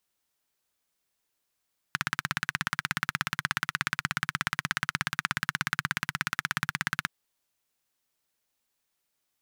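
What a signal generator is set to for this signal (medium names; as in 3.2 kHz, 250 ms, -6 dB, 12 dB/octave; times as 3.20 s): single-cylinder engine model, steady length 5.12 s, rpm 2000, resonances 150/1500 Hz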